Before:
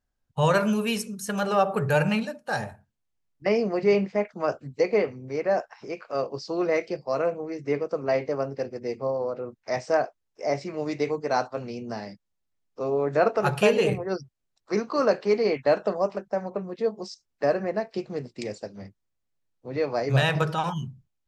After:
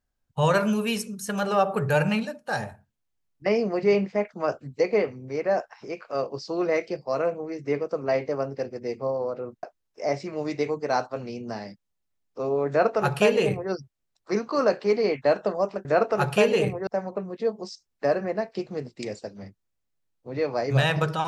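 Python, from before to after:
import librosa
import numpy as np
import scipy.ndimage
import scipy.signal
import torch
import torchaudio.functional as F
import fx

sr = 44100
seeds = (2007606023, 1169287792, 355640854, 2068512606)

y = fx.edit(x, sr, fx.cut(start_s=9.63, length_s=0.41),
    fx.duplicate(start_s=13.1, length_s=1.02, to_s=16.26), tone=tone)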